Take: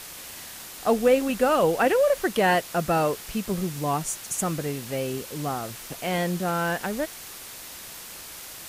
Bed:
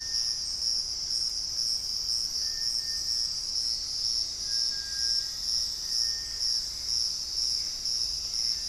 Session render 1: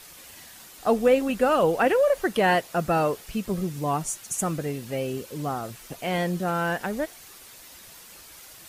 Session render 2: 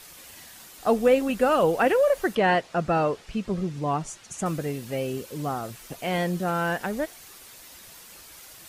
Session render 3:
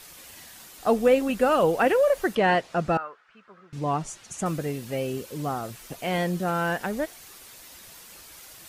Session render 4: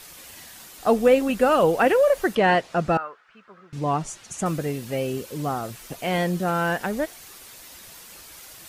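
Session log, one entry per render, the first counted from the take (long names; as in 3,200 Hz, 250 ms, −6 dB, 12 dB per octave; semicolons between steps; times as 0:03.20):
broadband denoise 8 dB, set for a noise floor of −41 dBFS
0:02.35–0:04.46: high-frequency loss of the air 86 metres
0:02.97–0:03.73: resonant band-pass 1,400 Hz, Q 4.1
level +2.5 dB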